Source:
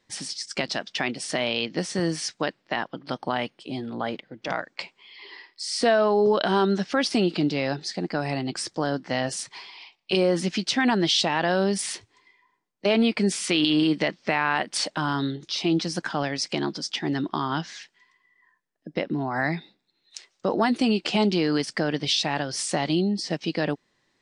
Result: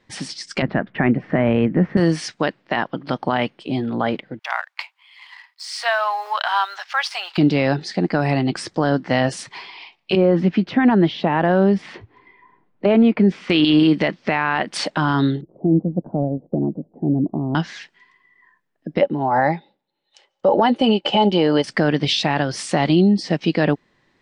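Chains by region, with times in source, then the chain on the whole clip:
0.62–1.97 s: Chebyshev low-pass 1.9 kHz, order 3 + bass shelf 290 Hz +11.5 dB
4.39–7.38 s: companding laws mixed up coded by A + steep high-pass 800 Hz
10.15–13.50 s: tape spacing loss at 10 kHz 36 dB + three bands compressed up and down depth 40%
15.41–17.55 s: steep low-pass 640 Hz + dynamic bell 380 Hz, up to -6 dB, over -40 dBFS, Q 3.3
19.01–21.64 s: small resonant body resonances 570/820/3000 Hz, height 16 dB, ringing for 35 ms + upward expansion, over -36 dBFS
whole clip: tone controls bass +3 dB, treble -11 dB; loudness maximiser +13.5 dB; trim -5.5 dB

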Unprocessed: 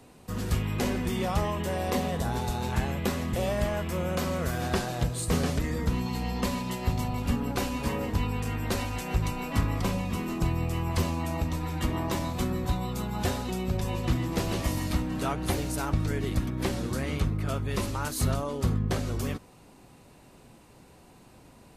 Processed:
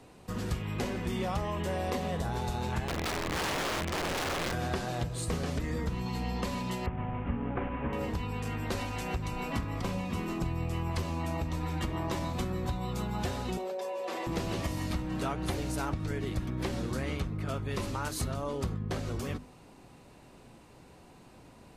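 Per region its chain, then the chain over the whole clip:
2.88–4.53 s: low-pass 3.7 kHz + integer overflow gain 25.5 dB
6.86–7.93 s: CVSD coder 16 kbps + low-pass 2.1 kHz
13.57–14.27 s: ladder high-pass 450 Hz, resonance 60% + comb 5.2 ms, depth 73% + level flattener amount 100%
whole clip: treble shelf 9.6 kHz -9.5 dB; compression, threshold -28 dBFS; hum notches 50/100/150/200/250 Hz

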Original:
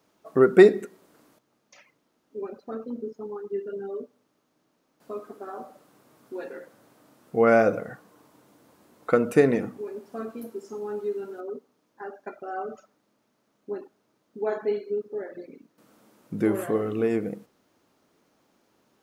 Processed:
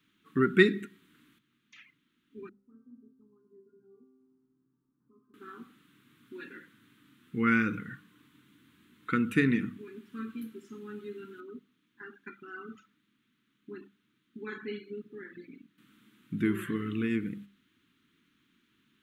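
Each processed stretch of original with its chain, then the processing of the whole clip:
2.49–5.34 s: inverse Chebyshev low-pass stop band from 3.3 kHz, stop band 60 dB + upward compressor, threshold -43 dBFS + feedback comb 130 Hz, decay 1.8 s, mix 90%
whole clip: Chebyshev band-stop 260–1600 Hz, order 2; resonant high shelf 4.2 kHz -6 dB, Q 3; hum notches 50/100/150/200 Hz

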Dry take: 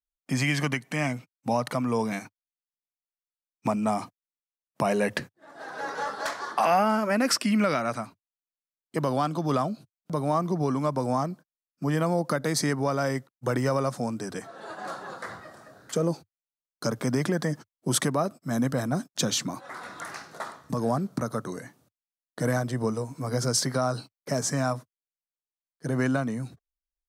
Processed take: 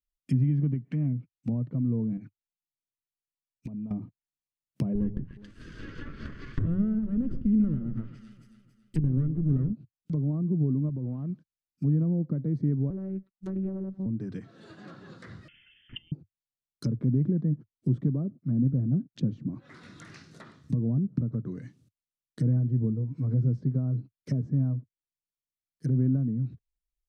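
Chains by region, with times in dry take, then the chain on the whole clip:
2.17–3.91 s: low-pass that closes with the level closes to 840 Hz, closed at -22.5 dBFS + compression 10:1, threshold -33 dBFS + touch-sensitive flanger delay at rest 7.8 ms, full sweep at -37 dBFS
4.95–9.73 s: comb filter that takes the minimum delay 0.63 ms + hum notches 60/120/180 Hz + echo whose repeats swap between lows and highs 138 ms, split 1.1 kHz, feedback 64%, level -14 dB
10.89–11.30 s: median filter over 15 samples + compression 2.5:1, threshold -30 dBFS
12.90–14.06 s: robot voice 191 Hz + loudspeaker Doppler distortion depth 1 ms
15.48–16.12 s: peaking EQ 630 Hz -4.5 dB 2.9 oct + frequency inversion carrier 3.3 kHz
18.23–18.94 s: treble shelf 2.1 kHz -11 dB + modulation noise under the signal 30 dB
whole clip: low-pass that closes with the level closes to 520 Hz, closed at -26 dBFS; FFT filter 120 Hz 0 dB, 330 Hz -9 dB, 790 Hz -28 dB, 2.7 kHz -12 dB; trim +6.5 dB

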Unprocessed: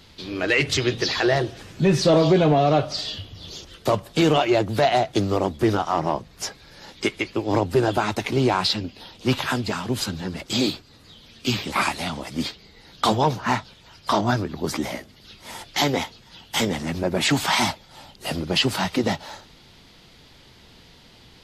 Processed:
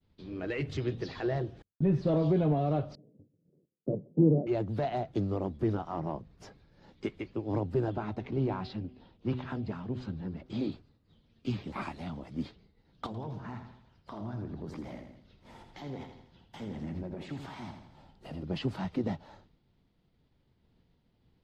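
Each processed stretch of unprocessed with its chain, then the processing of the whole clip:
1.62–2.07 s: gate -33 dBFS, range -37 dB + treble shelf 3.8 kHz -10.5 dB + tape noise reduction on one side only decoder only
2.95–4.47 s: square wave that keeps the level + elliptic band-pass 140–530 Hz, stop band 80 dB + three bands expanded up and down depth 40%
7.90–10.72 s: distance through air 110 m + de-hum 125.9 Hz, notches 6
13.06–18.43 s: compression, threshold -26 dBFS + feedback delay 82 ms, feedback 52%, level -8 dB
whole clip: expander -42 dBFS; FFT filter 180 Hz 0 dB, 4.1 kHz -17 dB, 12 kHz -28 dB; trim -6.5 dB

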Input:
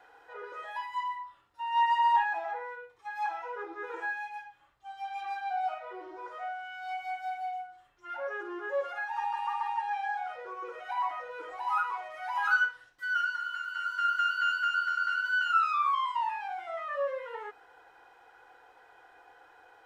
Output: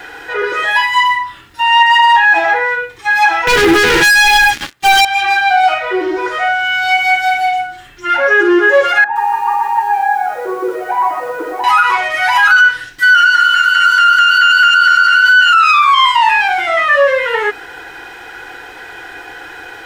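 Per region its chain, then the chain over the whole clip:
3.47–5.05 s: high-pass 150 Hz + waveshaping leveller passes 5
9.04–11.64 s: Butterworth band-pass 370 Hz, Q 0.5 + hum notches 60/120/180/240/300/360/420/480 Hz + bit-crushed delay 117 ms, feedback 35%, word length 11-bit, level -8.5 dB
whole clip: high-order bell 780 Hz -10.5 dB; loudness maximiser +32.5 dB; trim -1 dB

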